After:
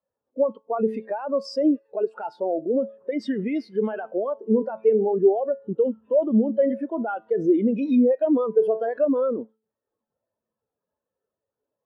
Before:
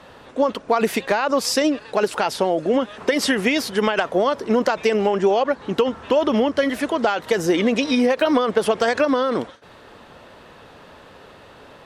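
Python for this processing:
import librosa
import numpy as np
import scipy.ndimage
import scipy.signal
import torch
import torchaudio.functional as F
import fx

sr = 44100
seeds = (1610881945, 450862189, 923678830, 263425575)

p1 = fx.comb_fb(x, sr, f0_hz=110.0, decay_s=1.0, harmonics='all', damping=0.0, mix_pct=60)
p2 = fx.over_compress(p1, sr, threshold_db=-31.0, ratio=-1.0)
p3 = p1 + F.gain(torch.from_numpy(p2), 0.0).numpy()
y = fx.spectral_expand(p3, sr, expansion=2.5)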